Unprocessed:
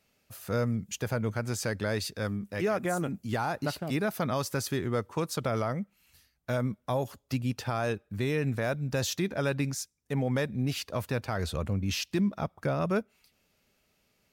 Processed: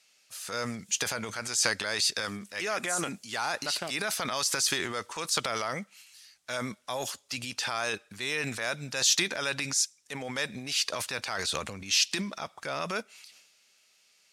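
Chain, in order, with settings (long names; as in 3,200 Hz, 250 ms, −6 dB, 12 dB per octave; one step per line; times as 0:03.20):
meter weighting curve ITU-R 468
transient designer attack −3 dB, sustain +9 dB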